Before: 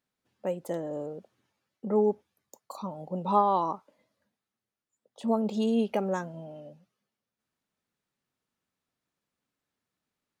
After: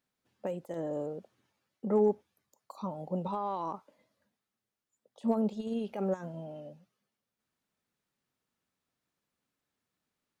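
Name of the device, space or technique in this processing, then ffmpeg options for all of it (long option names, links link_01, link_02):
de-esser from a sidechain: -filter_complex "[0:a]asplit=2[link_01][link_02];[link_02]highpass=4900,apad=whole_len=458661[link_03];[link_01][link_03]sidechaincompress=threshold=-60dB:ratio=8:attack=1.6:release=48"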